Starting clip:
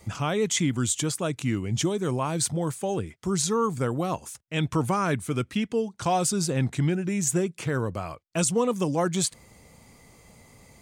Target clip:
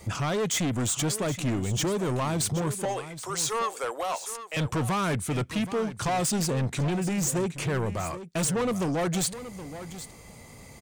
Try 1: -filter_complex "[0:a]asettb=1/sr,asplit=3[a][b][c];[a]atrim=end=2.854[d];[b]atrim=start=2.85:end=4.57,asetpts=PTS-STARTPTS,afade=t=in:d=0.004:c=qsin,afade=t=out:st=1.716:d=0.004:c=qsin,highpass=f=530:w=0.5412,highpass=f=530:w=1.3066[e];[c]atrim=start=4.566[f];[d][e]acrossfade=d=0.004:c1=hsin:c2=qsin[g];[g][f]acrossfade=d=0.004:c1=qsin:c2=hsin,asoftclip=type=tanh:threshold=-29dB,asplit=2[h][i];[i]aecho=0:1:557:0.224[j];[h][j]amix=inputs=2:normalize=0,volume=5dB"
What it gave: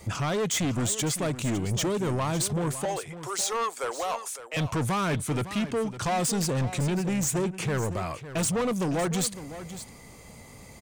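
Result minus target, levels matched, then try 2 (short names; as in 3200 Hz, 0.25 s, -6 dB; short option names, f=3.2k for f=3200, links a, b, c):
echo 0.216 s early
-filter_complex "[0:a]asettb=1/sr,asplit=3[a][b][c];[a]atrim=end=2.854[d];[b]atrim=start=2.85:end=4.57,asetpts=PTS-STARTPTS,afade=t=in:d=0.004:c=qsin,afade=t=out:st=1.716:d=0.004:c=qsin,highpass=f=530:w=0.5412,highpass=f=530:w=1.3066[e];[c]atrim=start=4.566[f];[d][e]acrossfade=d=0.004:c1=hsin:c2=qsin[g];[g][f]acrossfade=d=0.004:c1=qsin:c2=hsin,asoftclip=type=tanh:threshold=-29dB,asplit=2[h][i];[i]aecho=0:1:773:0.224[j];[h][j]amix=inputs=2:normalize=0,volume=5dB"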